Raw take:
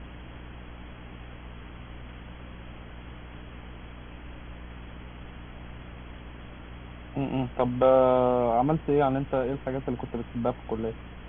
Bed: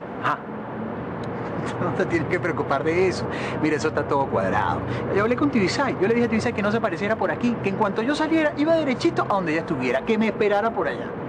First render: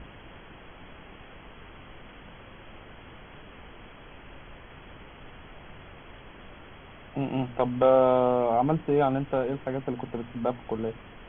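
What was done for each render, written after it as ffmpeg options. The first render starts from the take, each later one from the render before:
ffmpeg -i in.wav -af "bandreject=frequency=60:width_type=h:width=6,bandreject=frequency=120:width_type=h:width=6,bandreject=frequency=180:width_type=h:width=6,bandreject=frequency=240:width_type=h:width=6,bandreject=frequency=300:width_type=h:width=6" out.wav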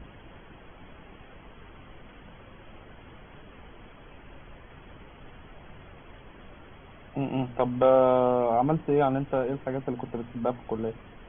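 ffmpeg -i in.wav -af "afftdn=noise_reduction=6:noise_floor=-48" out.wav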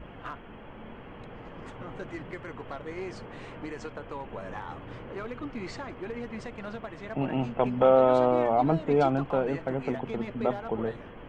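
ffmpeg -i in.wav -i bed.wav -filter_complex "[1:a]volume=-17dB[link_01];[0:a][link_01]amix=inputs=2:normalize=0" out.wav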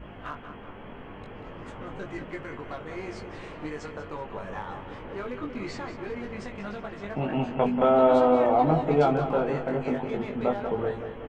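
ffmpeg -i in.wav -filter_complex "[0:a]asplit=2[link_01][link_02];[link_02]adelay=20,volume=-3.5dB[link_03];[link_01][link_03]amix=inputs=2:normalize=0,asplit=2[link_04][link_05];[link_05]adelay=187,lowpass=frequency=4700:poles=1,volume=-9dB,asplit=2[link_06][link_07];[link_07]adelay=187,lowpass=frequency=4700:poles=1,volume=0.53,asplit=2[link_08][link_09];[link_09]adelay=187,lowpass=frequency=4700:poles=1,volume=0.53,asplit=2[link_10][link_11];[link_11]adelay=187,lowpass=frequency=4700:poles=1,volume=0.53,asplit=2[link_12][link_13];[link_13]adelay=187,lowpass=frequency=4700:poles=1,volume=0.53,asplit=2[link_14][link_15];[link_15]adelay=187,lowpass=frequency=4700:poles=1,volume=0.53[link_16];[link_04][link_06][link_08][link_10][link_12][link_14][link_16]amix=inputs=7:normalize=0" out.wav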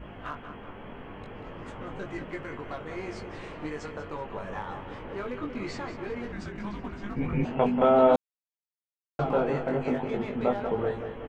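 ffmpeg -i in.wav -filter_complex "[0:a]asettb=1/sr,asplit=3[link_01][link_02][link_03];[link_01]atrim=end=6.324[link_04];[link_02]atrim=start=6.32:end=7.45,asetpts=PTS-STARTPTS,afade=type=in:duration=0.004:curve=qsin,afade=type=out:start_time=1.126:duration=0.004:curve=qsin,afreqshift=-410[link_05];[link_03]atrim=start=7.446[link_06];[link_04][link_05]acrossfade=duration=0.004:curve1=hsin:curve2=qsin[link_07];[link_07][link_06]acrossfade=duration=0.004:curve1=qsin:curve2=hsin,asplit=3[link_08][link_09][link_10];[link_08]atrim=end=8.16,asetpts=PTS-STARTPTS,afade=type=out:start_time=8.156:duration=0.004:curve=hsin[link_11];[link_09]atrim=start=8.16:end=9.19,asetpts=PTS-STARTPTS,volume=0[link_12];[link_10]atrim=start=9.19,asetpts=PTS-STARTPTS,afade=type=in:duration=0.004:curve=hsin[link_13];[link_11][link_12][link_13]concat=n=3:v=0:a=1" out.wav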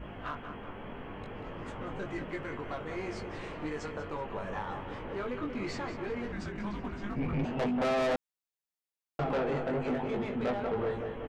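ffmpeg -i in.wav -af "asoftclip=type=tanh:threshold=-26.5dB" out.wav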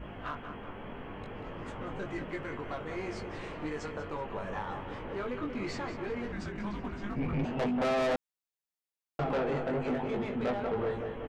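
ffmpeg -i in.wav -af anull out.wav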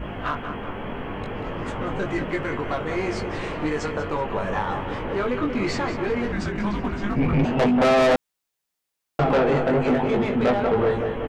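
ffmpeg -i in.wav -af "volume=11.5dB" out.wav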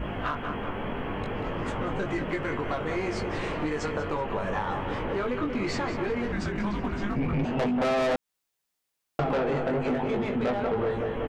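ffmpeg -i in.wav -af "acompressor=threshold=-27dB:ratio=3" out.wav

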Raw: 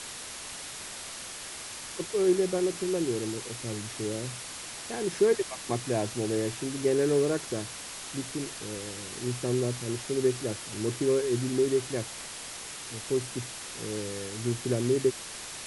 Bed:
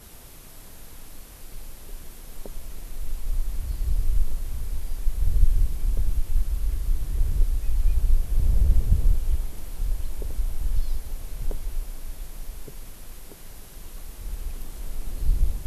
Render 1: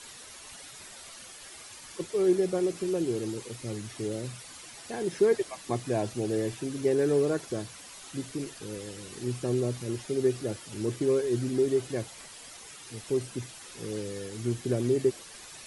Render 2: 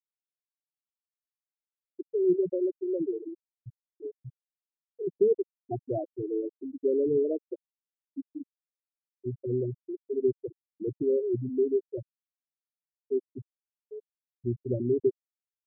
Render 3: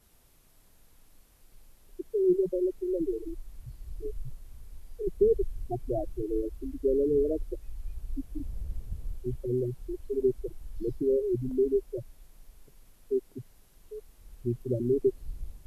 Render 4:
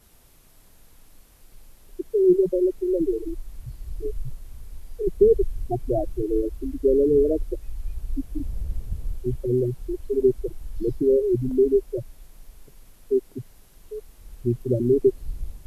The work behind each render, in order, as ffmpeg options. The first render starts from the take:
ffmpeg -i in.wav -af "afftdn=noise_reduction=10:noise_floor=-41" out.wav
ffmpeg -i in.wav -af "lowpass=5700,afftfilt=real='re*gte(hypot(re,im),0.2)':imag='im*gte(hypot(re,im),0.2)':win_size=1024:overlap=0.75" out.wav
ffmpeg -i in.wav -i bed.wav -filter_complex "[1:a]volume=-17dB[link_01];[0:a][link_01]amix=inputs=2:normalize=0" out.wav
ffmpeg -i in.wav -af "volume=7dB" out.wav

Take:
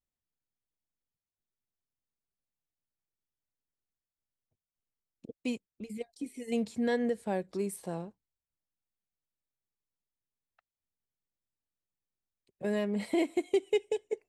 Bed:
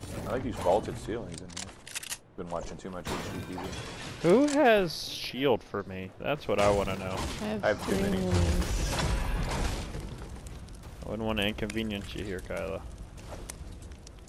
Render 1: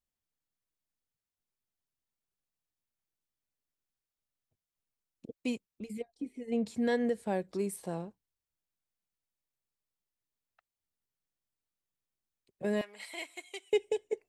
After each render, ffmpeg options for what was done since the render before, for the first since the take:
ffmpeg -i in.wav -filter_complex "[0:a]asplit=3[link_01][link_02][link_03];[link_01]afade=type=out:start_time=6:duration=0.02[link_04];[link_02]lowpass=frequency=1200:poles=1,afade=type=in:start_time=6:duration=0.02,afade=type=out:start_time=6.65:duration=0.02[link_05];[link_03]afade=type=in:start_time=6.65:duration=0.02[link_06];[link_04][link_05][link_06]amix=inputs=3:normalize=0,asettb=1/sr,asplit=3[link_07][link_08][link_09];[link_07]atrim=end=12.814[link_10];[link_08]atrim=start=12.81:end=13.73,asetpts=PTS-STARTPTS,afade=type=in:duration=0.004:curve=qsin,afade=type=out:start_time=0.916:duration=0.004:curve=qsin,highpass=1300[link_11];[link_09]atrim=start=13.726[link_12];[link_10][link_11]acrossfade=duration=0.004:curve1=hsin:curve2=qsin[link_13];[link_13][link_12]acrossfade=duration=0.004:curve1=qsin:curve2=hsin" out.wav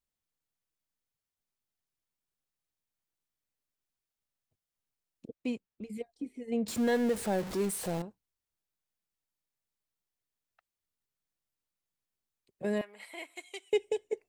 ffmpeg -i in.wav -filter_complex "[0:a]asettb=1/sr,asplit=3[link_01][link_02][link_03];[link_01]atrim=end=5.284[link_04];[link_02]atrim=start=5.28:end=5.93,asetpts=PTS-STARTPTS,afade=type=in:duration=0.004:curve=qsin,afade=type=out:start_time=0.646:duration=0.004:curve=qsin,highshelf=frequency=4100:gain=-11[link_05];[link_03]atrim=start=5.926[link_06];[link_04][link_05]acrossfade=duration=0.004:curve1=hsin:curve2=qsin[link_07];[link_07][link_06]acrossfade=duration=0.004:curve1=qsin:curve2=hsin,asettb=1/sr,asplit=3[link_08][link_09][link_10];[link_08]atrim=end=6.684[link_11];[link_09]atrim=start=6.68:end=8.02,asetpts=PTS-STARTPTS,afade=type=in:duration=0.004:curve=qsin,afade=type=out:start_time=1.336:duration=0.004:curve=qsin,aeval=exprs='val(0)+0.5*0.0178*sgn(val(0))':channel_layout=same[link_12];[link_10]atrim=start=8.016[link_13];[link_11][link_12]acrossfade=duration=0.004:curve1=hsin:curve2=qsin[link_14];[link_14][link_13]acrossfade=duration=0.004:curve1=qsin:curve2=hsin,asettb=1/sr,asplit=3[link_15][link_16][link_17];[link_15]atrim=end=12.784[link_18];[link_16]atrim=start=12.78:end=13.36,asetpts=PTS-STARTPTS,afade=type=in:duration=0.004:curve=qsin,afade=type=out:start_time=0.576:duration=0.004:curve=qsin,equalizer=frequency=5500:width=0.77:gain=-9.5[link_19];[link_17]atrim=start=13.356[link_20];[link_18][link_19]acrossfade=duration=0.004:curve1=hsin:curve2=qsin[link_21];[link_21][link_20]acrossfade=duration=0.004:curve1=qsin:curve2=hsin" out.wav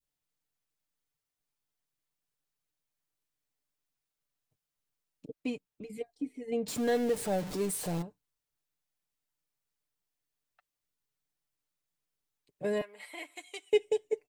ffmpeg -i in.wav -af "adynamicequalizer=threshold=0.00447:dfrequency=1400:dqfactor=0.75:tfrequency=1400:tqfactor=0.75:attack=5:release=100:ratio=0.375:range=2:mode=cutabove:tftype=bell,aecho=1:1:6.8:0.54" out.wav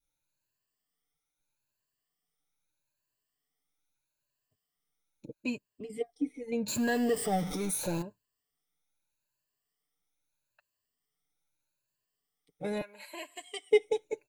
ffmpeg -i in.wav -af "afftfilt=real='re*pow(10,14/40*sin(2*PI*(1.4*log(max(b,1)*sr/1024/100)/log(2)-(0.79)*(pts-256)/sr)))':imag='im*pow(10,14/40*sin(2*PI*(1.4*log(max(b,1)*sr/1024/100)/log(2)-(0.79)*(pts-256)/sr)))':win_size=1024:overlap=0.75" out.wav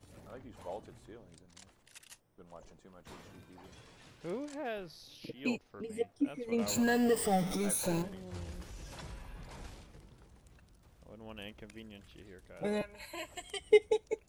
ffmpeg -i in.wav -i bed.wav -filter_complex "[1:a]volume=-17.5dB[link_01];[0:a][link_01]amix=inputs=2:normalize=0" out.wav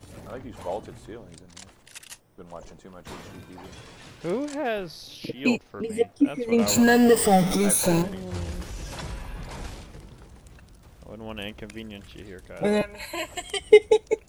ffmpeg -i in.wav -af "volume=11.5dB,alimiter=limit=-3dB:level=0:latency=1" out.wav

